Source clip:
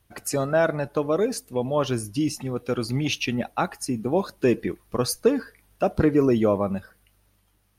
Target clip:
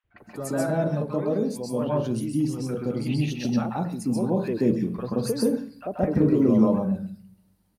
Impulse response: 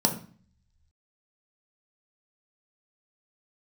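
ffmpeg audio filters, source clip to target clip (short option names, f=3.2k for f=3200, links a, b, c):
-filter_complex "[0:a]equalizer=f=5.5k:w=7:g=-7,acrossover=split=990|3000[a][b][c];[a]adelay=40[d];[c]adelay=180[e];[d][b][e]amix=inputs=3:normalize=0,asplit=2[f][g];[1:a]atrim=start_sample=2205,adelay=130[h];[g][h]afir=irnorm=-1:irlink=0,volume=-9dB[i];[f][i]amix=inputs=2:normalize=0,volume=-8.5dB"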